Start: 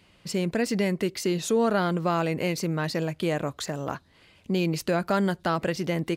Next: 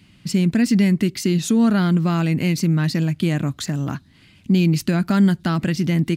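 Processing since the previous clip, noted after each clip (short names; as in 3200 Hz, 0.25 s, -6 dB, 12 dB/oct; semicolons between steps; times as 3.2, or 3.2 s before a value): graphic EQ 125/250/500/1000 Hz +7/+8/-12/-5 dB; gain +5 dB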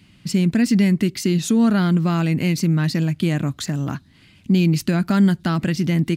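nothing audible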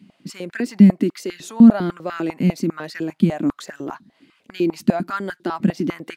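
tilt shelf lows +3.5 dB, about 1100 Hz; stepped high-pass 10 Hz 210–1600 Hz; gain -5.5 dB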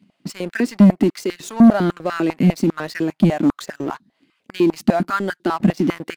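sample leveller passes 2; gain -3 dB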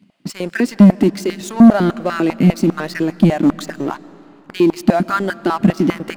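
reverb RT60 3.1 s, pre-delay 0.1 s, DRR 19 dB; gain +3 dB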